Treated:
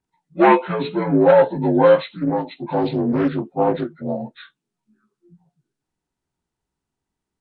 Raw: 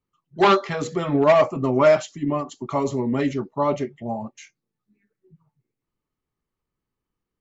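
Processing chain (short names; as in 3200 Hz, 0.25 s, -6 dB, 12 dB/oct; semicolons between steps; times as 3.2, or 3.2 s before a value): inharmonic rescaling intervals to 83%; 1.97–4.22 Doppler distortion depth 0.32 ms; gain +4.5 dB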